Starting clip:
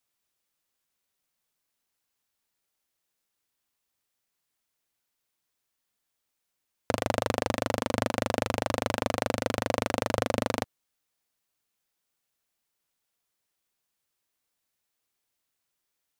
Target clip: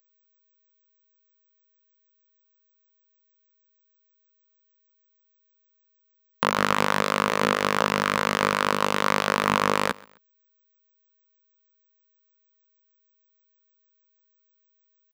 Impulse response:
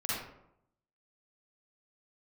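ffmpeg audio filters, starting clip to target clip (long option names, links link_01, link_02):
-af "highshelf=frequency=4000:gain=-12,asetrate=47187,aresample=44100,aeval=exprs='val(0)+0.00141*sin(2*PI*12000*n/s)':channel_layout=same,asetrate=83250,aresample=44100,atempo=0.529732,aecho=1:1:130|260:0.0631|0.0221,volume=6.5dB"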